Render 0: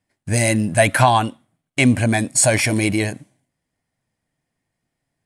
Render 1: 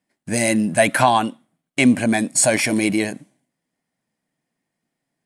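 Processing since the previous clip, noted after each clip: resonant low shelf 130 Hz -12.5 dB, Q 1.5; gain -1 dB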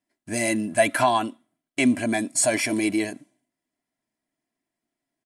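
comb 3 ms, depth 61%; gain -6.5 dB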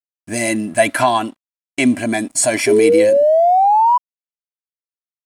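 painted sound rise, 2.67–3.98, 400–1000 Hz -17 dBFS; crossover distortion -52 dBFS; gain +5.5 dB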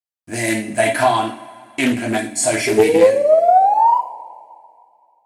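reverb, pre-delay 3 ms, DRR -1.5 dB; Doppler distortion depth 0.24 ms; gain -4.5 dB

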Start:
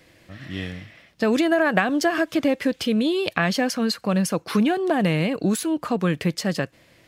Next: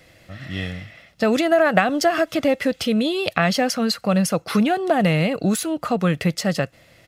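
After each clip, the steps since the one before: comb 1.5 ms, depth 38%; gain +2.5 dB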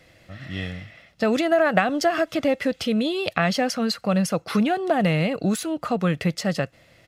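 high shelf 9700 Hz -6.5 dB; gain -2.5 dB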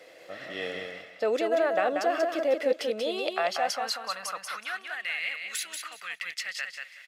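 reverse; compressor 5:1, threshold -29 dBFS, peak gain reduction 14.5 dB; reverse; high-pass sweep 460 Hz -> 2000 Hz, 2.8–5.06; feedback echo 0.186 s, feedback 21%, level -5 dB; gain +1 dB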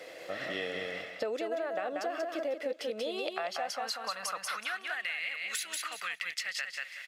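compressor 6:1, threshold -37 dBFS, peak gain reduction 16 dB; gain +4.5 dB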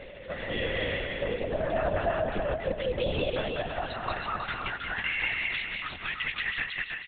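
rotary speaker horn 0.9 Hz; feedback echo 0.322 s, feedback 24%, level -4 dB; LPC vocoder at 8 kHz whisper; gain +6.5 dB

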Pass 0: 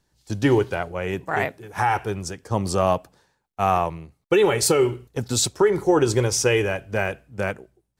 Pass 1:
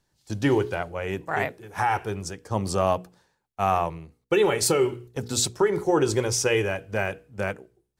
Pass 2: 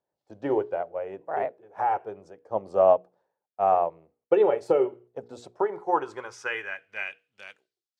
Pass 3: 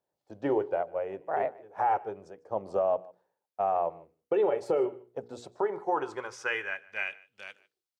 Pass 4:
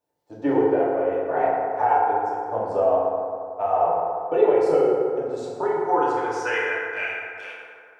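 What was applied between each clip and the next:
notches 60/120/180/240/300/360/420/480 Hz; gain -2.5 dB
band-pass sweep 600 Hz -> 4700 Hz, 5.44–7.83; upward expander 1.5:1, over -40 dBFS; gain +7.5 dB
limiter -18.5 dBFS, peak gain reduction 10.5 dB; echo 0.15 s -22.5 dB
FDN reverb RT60 2.4 s, low-frequency decay 0.85×, high-frequency decay 0.4×, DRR -7.5 dB

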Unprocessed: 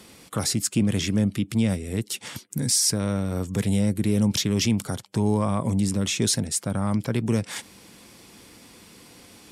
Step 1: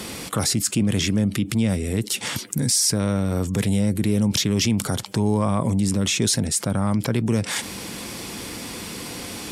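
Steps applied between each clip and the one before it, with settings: fast leveller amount 50%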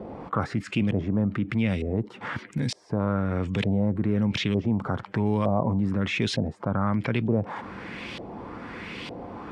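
LFO low-pass saw up 1.1 Hz 600–3300 Hz; gain -4 dB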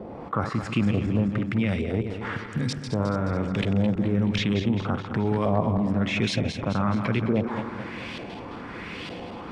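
regenerating reverse delay 0.107 s, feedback 71%, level -8 dB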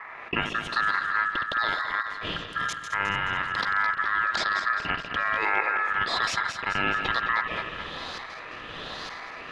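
dynamic EQ 1800 Hz, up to +5 dB, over -43 dBFS, Q 0.75; ring modulator 1500 Hz

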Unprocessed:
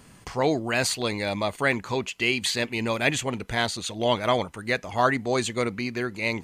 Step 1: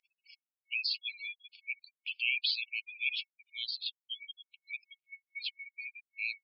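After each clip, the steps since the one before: spectral gate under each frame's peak -15 dB strong; in parallel at -1.5 dB: limiter -16.5 dBFS, peak gain reduction 8.5 dB; on the sum: FFT band-pass 2200–5400 Hz; gain -7.5 dB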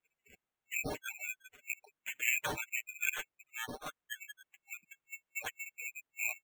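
bell 4400 Hz -10.5 dB 1.9 oct; comb 6.3 ms, depth 97%; sample-and-hold 9×; gain +2 dB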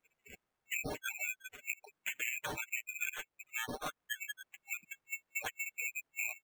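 median filter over 15 samples; compressor 10:1, threshold -43 dBFS, peak gain reduction 16.5 dB; gain +7.5 dB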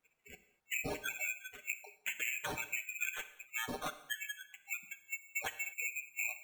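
non-linear reverb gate 0.27 s falling, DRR 10 dB

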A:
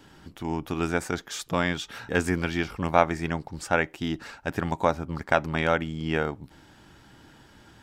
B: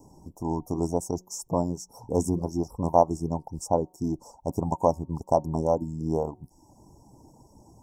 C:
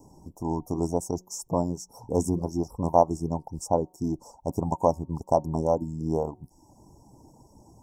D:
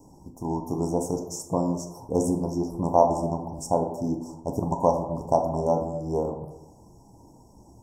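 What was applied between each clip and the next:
Chebyshev band-stop 1000–5500 Hz, order 5; de-hum 183.3 Hz, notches 15; reverb removal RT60 0.6 s; gain +2.5 dB
nothing audible
plate-style reverb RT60 0.97 s, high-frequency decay 0.4×, DRR 3.5 dB

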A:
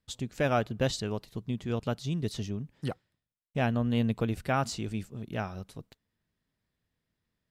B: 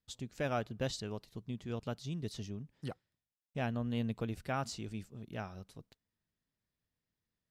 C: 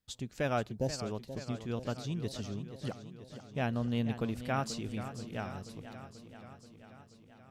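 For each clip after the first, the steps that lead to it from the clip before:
bell 5300 Hz +2.5 dB; gain -8 dB
spectral gain 0.72–1.07, 960–4200 Hz -19 dB; warbling echo 0.483 s, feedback 67%, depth 90 cents, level -11.5 dB; gain +3 dB

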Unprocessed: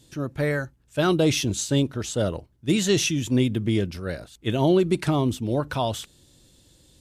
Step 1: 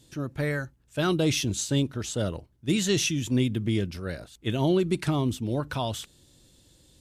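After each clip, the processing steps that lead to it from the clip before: dynamic EQ 610 Hz, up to -4 dB, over -32 dBFS, Q 0.76; gain -2 dB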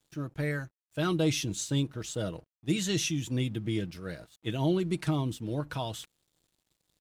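comb 6.3 ms, depth 42%; crossover distortion -54 dBFS; gain -5 dB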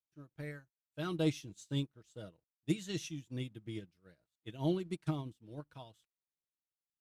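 upward expander 2.5:1, over -42 dBFS; gain -3 dB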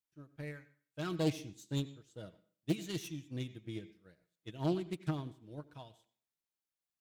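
self-modulated delay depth 0.25 ms; on a send at -14.5 dB: reverb RT60 0.45 s, pre-delay 80 ms

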